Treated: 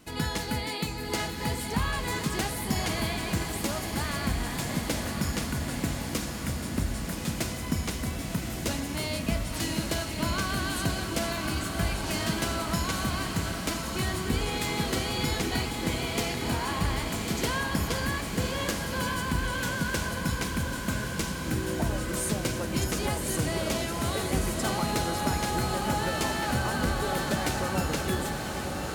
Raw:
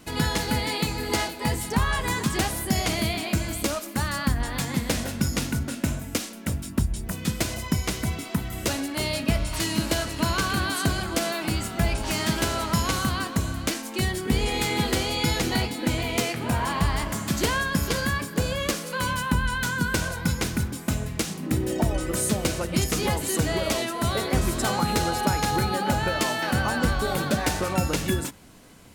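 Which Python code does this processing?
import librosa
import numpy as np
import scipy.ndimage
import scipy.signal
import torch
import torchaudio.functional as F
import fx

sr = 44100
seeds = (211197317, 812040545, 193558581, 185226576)

y = fx.echo_diffused(x, sr, ms=1102, feedback_pct=67, wet_db=-5)
y = F.gain(torch.from_numpy(y), -5.5).numpy()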